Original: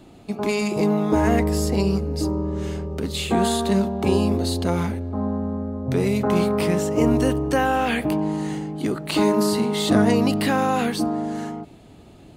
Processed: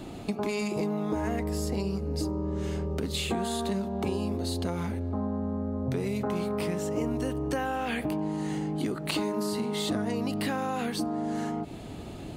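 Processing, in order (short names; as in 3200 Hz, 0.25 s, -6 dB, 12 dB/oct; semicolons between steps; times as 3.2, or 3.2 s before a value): compressor 6:1, threshold -35 dBFS, peak gain reduction 20.5 dB; gain +6.5 dB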